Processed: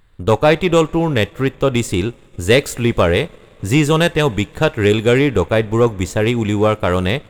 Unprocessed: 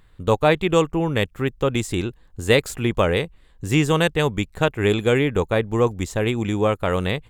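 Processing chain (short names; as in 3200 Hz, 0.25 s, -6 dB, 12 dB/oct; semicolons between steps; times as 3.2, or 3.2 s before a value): two-slope reverb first 0.27 s, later 4.3 s, from -19 dB, DRR 17 dB; sample leveller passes 1; gain +2 dB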